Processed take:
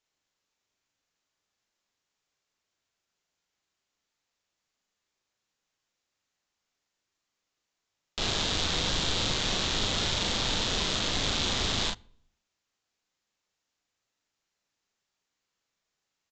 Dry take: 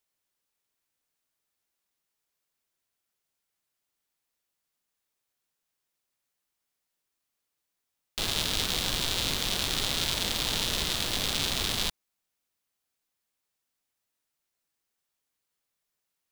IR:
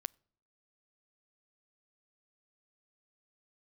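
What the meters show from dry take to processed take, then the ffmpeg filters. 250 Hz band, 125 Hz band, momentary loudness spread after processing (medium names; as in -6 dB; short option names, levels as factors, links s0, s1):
+3.0 dB, +3.0 dB, 3 LU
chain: -filter_complex "[0:a]aresample=16000,asoftclip=type=tanh:threshold=0.0794,aresample=44100,aecho=1:1:38|48:0.631|0.237[s0];[1:a]atrim=start_sample=2205,asetrate=33516,aresample=44100[s1];[s0][s1]afir=irnorm=-1:irlink=0,volume=1.5"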